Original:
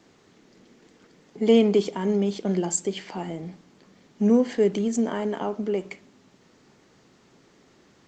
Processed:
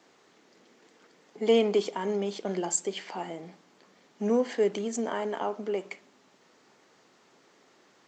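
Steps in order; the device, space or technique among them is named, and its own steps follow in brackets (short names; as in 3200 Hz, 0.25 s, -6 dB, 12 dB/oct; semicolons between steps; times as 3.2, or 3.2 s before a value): filter by subtraction (in parallel: LPF 760 Hz 12 dB/oct + phase invert); on the sum: gain -2 dB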